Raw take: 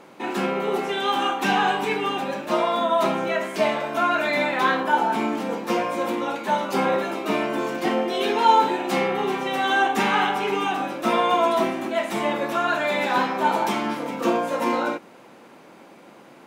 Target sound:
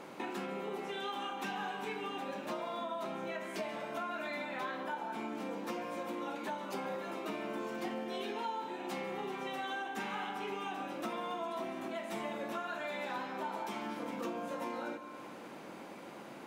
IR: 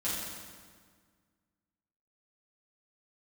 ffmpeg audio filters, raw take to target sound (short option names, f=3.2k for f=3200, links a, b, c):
-filter_complex "[0:a]acompressor=threshold=-37dB:ratio=6,asplit=2[a][b];[1:a]atrim=start_sample=2205,adelay=138[c];[b][c]afir=irnorm=-1:irlink=0,volume=-17dB[d];[a][d]amix=inputs=2:normalize=0,volume=-1.5dB"